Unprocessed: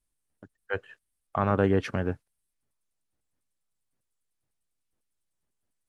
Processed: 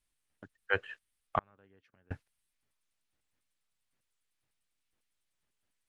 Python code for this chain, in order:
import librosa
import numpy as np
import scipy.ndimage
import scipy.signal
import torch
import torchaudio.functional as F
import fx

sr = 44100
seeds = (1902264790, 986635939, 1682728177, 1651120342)

y = fx.peak_eq(x, sr, hz=2600.0, db=9.0, octaves=2.4)
y = fx.gate_flip(y, sr, shuts_db=-20.0, range_db=-39, at=(1.38, 2.11))
y = y * librosa.db_to_amplitude(-3.0)